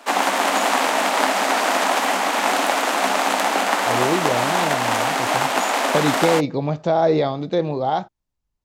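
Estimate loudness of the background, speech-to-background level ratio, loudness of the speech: -19.5 LUFS, -3.0 dB, -22.5 LUFS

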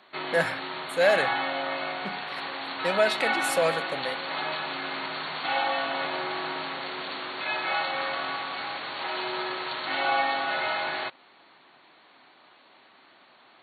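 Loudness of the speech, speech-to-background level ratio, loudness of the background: -27.0 LUFS, 2.5 dB, -29.5 LUFS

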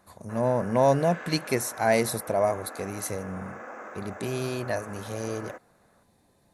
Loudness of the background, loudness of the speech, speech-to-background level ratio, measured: -41.5 LUFS, -27.5 LUFS, 14.0 dB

